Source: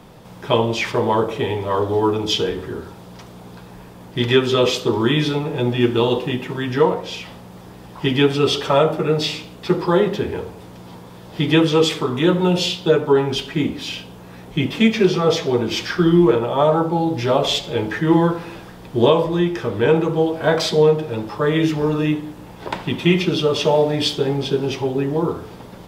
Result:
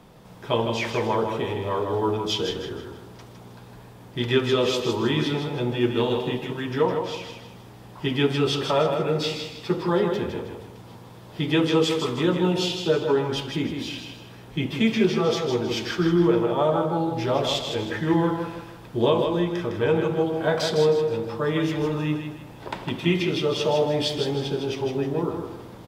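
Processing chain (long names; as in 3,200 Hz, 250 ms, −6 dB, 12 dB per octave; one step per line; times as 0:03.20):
repeating echo 158 ms, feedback 37%, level −6 dB
level −6.5 dB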